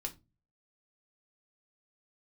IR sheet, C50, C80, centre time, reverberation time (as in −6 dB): 17.0 dB, 25.0 dB, 7 ms, 0.25 s